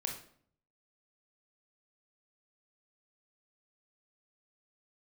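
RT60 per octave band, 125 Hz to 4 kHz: 0.90, 0.75, 0.60, 0.55, 0.50, 0.45 seconds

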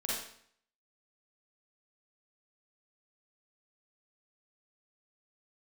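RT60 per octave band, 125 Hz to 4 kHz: 0.65, 0.65, 0.60, 0.60, 0.60, 0.55 seconds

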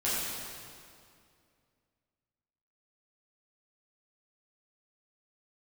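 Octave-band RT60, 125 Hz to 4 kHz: 2.7, 2.6, 2.4, 2.2, 2.0, 1.9 seconds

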